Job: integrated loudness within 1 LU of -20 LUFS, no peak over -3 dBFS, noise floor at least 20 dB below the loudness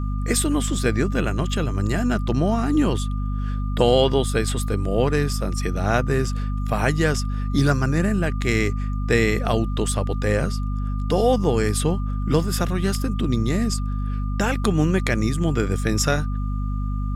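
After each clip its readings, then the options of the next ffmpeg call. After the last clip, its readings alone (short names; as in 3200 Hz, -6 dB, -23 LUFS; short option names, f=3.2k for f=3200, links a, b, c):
hum 50 Hz; harmonics up to 250 Hz; hum level -22 dBFS; steady tone 1200 Hz; tone level -39 dBFS; loudness -22.5 LUFS; peak -4.0 dBFS; loudness target -20.0 LUFS
-> -af "bandreject=f=50:t=h:w=4,bandreject=f=100:t=h:w=4,bandreject=f=150:t=h:w=4,bandreject=f=200:t=h:w=4,bandreject=f=250:t=h:w=4"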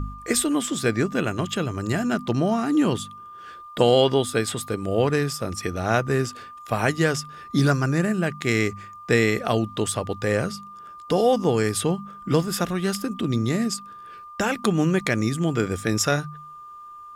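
hum none; steady tone 1200 Hz; tone level -39 dBFS
-> -af "bandreject=f=1.2k:w=30"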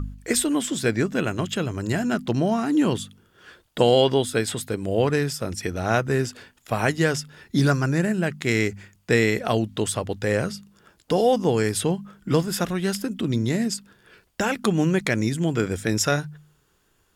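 steady tone none; loudness -23.5 LUFS; peak -4.5 dBFS; loudness target -20.0 LUFS
-> -af "volume=3.5dB,alimiter=limit=-3dB:level=0:latency=1"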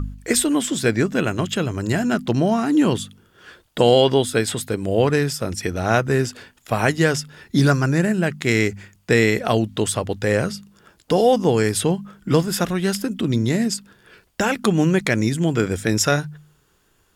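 loudness -20.0 LUFS; peak -3.0 dBFS; noise floor -62 dBFS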